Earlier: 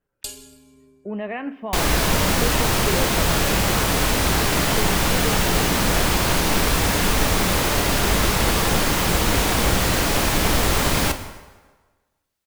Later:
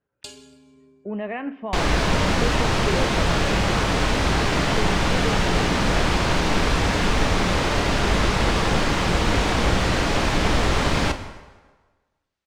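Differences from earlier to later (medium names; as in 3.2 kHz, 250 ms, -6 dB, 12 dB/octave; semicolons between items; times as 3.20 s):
first sound: add high-pass 100 Hz; master: add distance through air 100 m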